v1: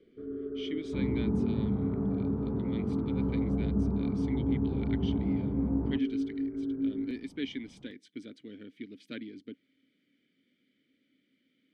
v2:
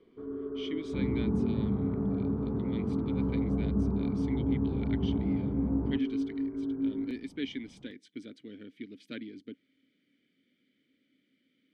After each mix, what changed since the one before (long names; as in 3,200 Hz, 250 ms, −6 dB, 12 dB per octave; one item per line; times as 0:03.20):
first sound: remove Butterworth band-reject 920 Hz, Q 1.2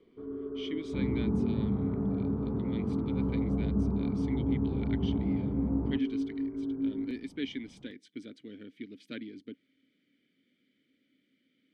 first sound: add high-frequency loss of the air 460 metres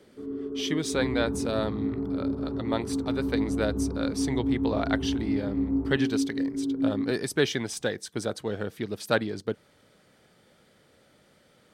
speech: remove formant filter i
first sound: add parametric band 220 Hz +6 dB 1.8 octaves
second sound: add parametric band 250 Hz −10 dB 1.9 octaves